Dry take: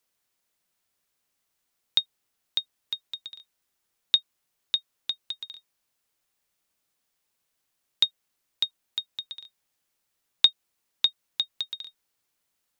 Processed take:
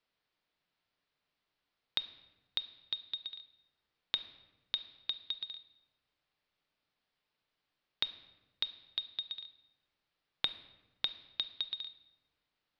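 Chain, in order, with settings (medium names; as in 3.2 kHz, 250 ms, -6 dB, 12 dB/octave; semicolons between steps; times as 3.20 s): steep low-pass 4.6 kHz 36 dB/octave; compression, threshold -30 dBFS, peak gain reduction 16 dB; reverberation RT60 1.2 s, pre-delay 7 ms, DRR 10.5 dB; trim -2 dB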